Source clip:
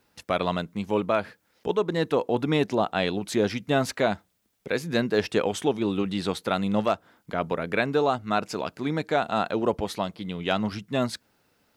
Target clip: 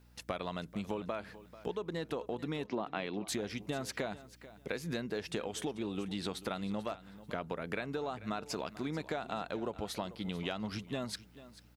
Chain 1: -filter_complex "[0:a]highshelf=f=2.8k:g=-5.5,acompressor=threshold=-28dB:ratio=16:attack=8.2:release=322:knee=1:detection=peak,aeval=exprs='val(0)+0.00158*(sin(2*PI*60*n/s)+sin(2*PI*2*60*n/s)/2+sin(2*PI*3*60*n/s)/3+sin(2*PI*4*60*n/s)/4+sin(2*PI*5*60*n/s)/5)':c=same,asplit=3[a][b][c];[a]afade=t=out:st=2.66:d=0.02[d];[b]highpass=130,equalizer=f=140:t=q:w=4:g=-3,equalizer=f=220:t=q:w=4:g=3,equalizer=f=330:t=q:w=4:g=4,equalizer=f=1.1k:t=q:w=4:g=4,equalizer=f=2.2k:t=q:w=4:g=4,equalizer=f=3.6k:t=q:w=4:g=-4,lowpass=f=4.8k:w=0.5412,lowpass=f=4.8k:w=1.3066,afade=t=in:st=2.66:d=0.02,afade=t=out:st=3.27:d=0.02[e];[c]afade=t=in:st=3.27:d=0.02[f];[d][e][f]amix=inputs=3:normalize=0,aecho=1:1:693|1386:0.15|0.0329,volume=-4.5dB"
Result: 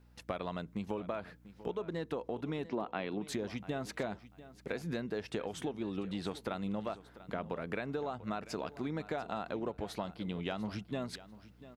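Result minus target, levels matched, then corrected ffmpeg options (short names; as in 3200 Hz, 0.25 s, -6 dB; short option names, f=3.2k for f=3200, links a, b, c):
echo 0.253 s late; 4000 Hz band -4.0 dB
-filter_complex "[0:a]highshelf=f=2.8k:g=2.5,acompressor=threshold=-28dB:ratio=16:attack=8.2:release=322:knee=1:detection=peak,aeval=exprs='val(0)+0.00158*(sin(2*PI*60*n/s)+sin(2*PI*2*60*n/s)/2+sin(2*PI*3*60*n/s)/3+sin(2*PI*4*60*n/s)/4+sin(2*PI*5*60*n/s)/5)':c=same,asplit=3[a][b][c];[a]afade=t=out:st=2.66:d=0.02[d];[b]highpass=130,equalizer=f=140:t=q:w=4:g=-3,equalizer=f=220:t=q:w=4:g=3,equalizer=f=330:t=q:w=4:g=4,equalizer=f=1.1k:t=q:w=4:g=4,equalizer=f=2.2k:t=q:w=4:g=4,equalizer=f=3.6k:t=q:w=4:g=-4,lowpass=f=4.8k:w=0.5412,lowpass=f=4.8k:w=1.3066,afade=t=in:st=2.66:d=0.02,afade=t=out:st=3.27:d=0.02[e];[c]afade=t=in:st=3.27:d=0.02[f];[d][e][f]amix=inputs=3:normalize=0,aecho=1:1:440|880:0.15|0.0329,volume=-4.5dB"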